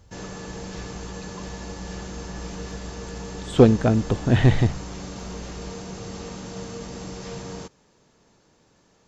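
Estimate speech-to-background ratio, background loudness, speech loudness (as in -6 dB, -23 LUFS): 17.0 dB, -36.5 LUFS, -19.5 LUFS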